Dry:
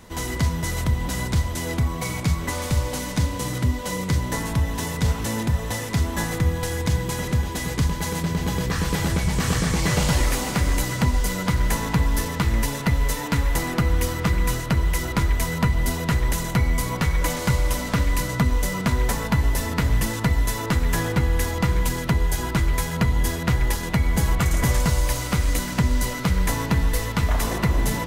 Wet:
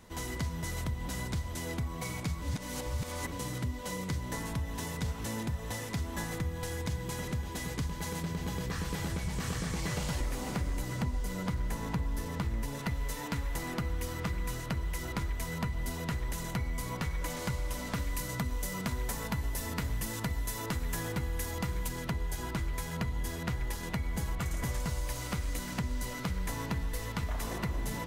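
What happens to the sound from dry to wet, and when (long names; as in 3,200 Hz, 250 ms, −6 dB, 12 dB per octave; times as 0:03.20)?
0:02.42–0:03.32: reverse
0:10.20–0:12.79: tilt shelving filter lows +3 dB
0:17.94–0:21.88: high-shelf EQ 6,300 Hz +7 dB
whole clip: downward compressor 2.5 to 1, threshold −23 dBFS; level −9 dB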